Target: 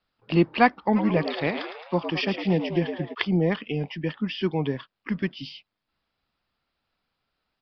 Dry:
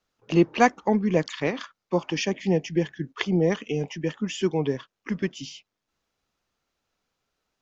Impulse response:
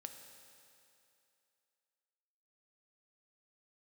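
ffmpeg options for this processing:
-filter_complex "[0:a]equalizer=f=430:w=1.6:g=-5,asplit=3[s0][s1][s2];[s0]afade=t=out:st=0.95:d=0.02[s3];[s1]asplit=7[s4][s5][s6][s7][s8][s9][s10];[s5]adelay=109,afreqshift=100,volume=0.355[s11];[s6]adelay=218,afreqshift=200,volume=0.195[s12];[s7]adelay=327,afreqshift=300,volume=0.107[s13];[s8]adelay=436,afreqshift=400,volume=0.0589[s14];[s9]adelay=545,afreqshift=500,volume=0.0324[s15];[s10]adelay=654,afreqshift=600,volume=0.0178[s16];[s4][s11][s12][s13][s14][s15][s16]amix=inputs=7:normalize=0,afade=t=in:st=0.95:d=0.02,afade=t=out:st=3.13:d=0.02[s17];[s2]afade=t=in:st=3.13:d=0.02[s18];[s3][s17][s18]amix=inputs=3:normalize=0,aresample=11025,aresample=44100,volume=1.19"

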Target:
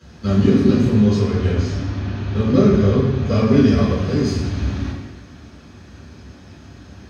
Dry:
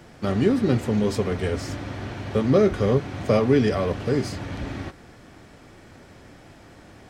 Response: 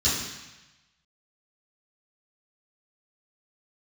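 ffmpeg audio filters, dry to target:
-filter_complex "[0:a]asplit=3[s0][s1][s2];[s0]afade=t=out:st=0.83:d=0.02[s3];[s1]adynamicsmooth=sensitivity=4:basefreq=5500,afade=t=in:st=0.83:d=0.02,afade=t=out:st=3.43:d=0.02[s4];[s2]afade=t=in:st=3.43:d=0.02[s5];[s3][s4][s5]amix=inputs=3:normalize=0[s6];[1:a]atrim=start_sample=2205,asetrate=40131,aresample=44100[s7];[s6][s7]afir=irnorm=-1:irlink=0,volume=0.266"

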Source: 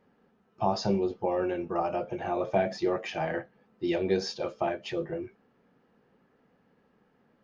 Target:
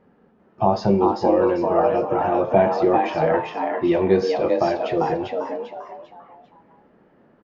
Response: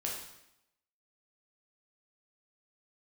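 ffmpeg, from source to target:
-filter_complex "[0:a]lowpass=f=1400:p=1,asplit=5[s0][s1][s2][s3][s4];[s1]adelay=396,afreqshift=120,volume=0.668[s5];[s2]adelay=792,afreqshift=240,volume=0.226[s6];[s3]adelay=1188,afreqshift=360,volume=0.0776[s7];[s4]adelay=1584,afreqshift=480,volume=0.0263[s8];[s0][s5][s6][s7][s8]amix=inputs=5:normalize=0,asplit=2[s9][s10];[1:a]atrim=start_sample=2205[s11];[s10][s11]afir=irnorm=-1:irlink=0,volume=0.15[s12];[s9][s12]amix=inputs=2:normalize=0,volume=2.66"

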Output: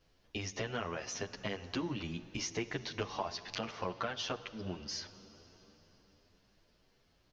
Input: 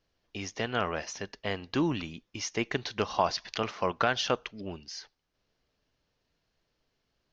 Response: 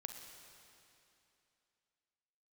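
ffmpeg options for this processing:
-filter_complex "[0:a]acompressor=threshold=0.00708:ratio=4,asplit=2[s0][s1];[1:a]atrim=start_sample=2205,asetrate=28665,aresample=44100,lowshelf=f=250:g=8.5[s2];[s1][s2]afir=irnorm=-1:irlink=0,volume=0.422[s3];[s0][s3]amix=inputs=2:normalize=0,asplit=2[s4][s5];[s5]adelay=9.6,afreqshift=2.4[s6];[s4][s6]amix=inputs=2:normalize=1,volume=2"

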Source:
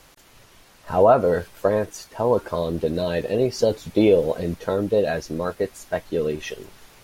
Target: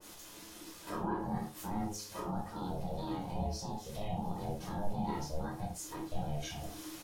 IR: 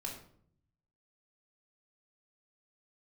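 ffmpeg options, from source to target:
-filter_complex "[0:a]bass=f=250:g=-3,treble=f=4000:g=8,bandreject=f=1800:w=6.3,bandreject=f=105:t=h:w=4,bandreject=f=210:t=h:w=4,acompressor=threshold=0.02:ratio=4,alimiter=level_in=1.58:limit=0.0631:level=0:latency=1:release=39,volume=0.631,flanger=delay=0.4:depth=8.5:regen=86:speed=1.6:shape=triangular,aeval=exprs='val(0)*sin(2*PI*310*n/s)':c=same,asplit=2[s0][s1];[s1]adelay=28,volume=0.282[s2];[s0][s2]amix=inputs=2:normalize=0[s3];[1:a]atrim=start_sample=2205,afade=t=out:st=0.21:d=0.01,atrim=end_sample=9702,asetrate=57330,aresample=44100[s4];[s3][s4]afir=irnorm=-1:irlink=0,adynamicequalizer=threshold=0.00126:dfrequency=1700:dqfactor=0.7:tfrequency=1700:tqfactor=0.7:attack=5:release=100:ratio=0.375:range=2:mode=cutabove:tftype=highshelf,volume=2.66"

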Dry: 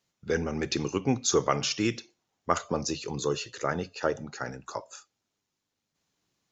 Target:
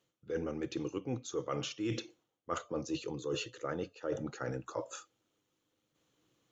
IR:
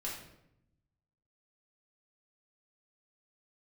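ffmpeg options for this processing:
-af "equalizer=f=125:t=o:w=0.33:g=7,equalizer=f=315:t=o:w=0.33:g=11,equalizer=f=500:t=o:w=0.33:g=11,equalizer=f=1250:t=o:w=0.33:g=5,equalizer=f=3150:t=o:w=0.33:g=6,equalizer=f=5000:t=o:w=0.33:g=-7,areverse,acompressor=threshold=0.02:ratio=8,areverse"

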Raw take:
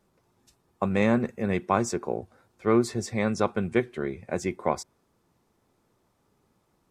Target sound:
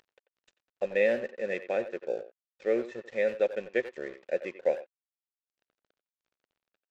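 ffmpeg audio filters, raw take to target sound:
-filter_complex "[0:a]afftfilt=real='re*between(b*sr/4096,110,4100)':imag='im*between(b*sr/4096,110,4100)':win_size=4096:overlap=0.75,asplit=3[s0][s1][s2];[s0]bandpass=f=530:t=q:w=8,volume=1[s3];[s1]bandpass=f=1840:t=q:w=8,volume=0.501[s4];[s2]bandpass=f=2480:t=q:w=8,volume=0.355[s5];[s3][s4][s5]amix=inputs=3:normalize=0,adynamicequalizer=threshold=0.00501:dfrequency=470:dqfactor=4.5:tfrequency=470:tqfactor=4.5:attack=5:release=100:ratio=0.375:range=3.5:mode=cutabove:tftype=bell,acompressor=mode=upward:threshold=0.00355:ratio=2.5,aemphasis=mode=production:type=75kf,aresample=16000,aeval=exprs='sgn(val(0))*max(abs(val(0))-0.0015,0)':c=same,aresample=44100,asplit=2[s6][s7];[s7]adelay=90,highpass=300,lowpass=3400,asoftclip=type=hard:threshold=0.0335,volume=0.251[s8];[s6][s8]amix=inputs=2:normalize=0,volume=2.11"

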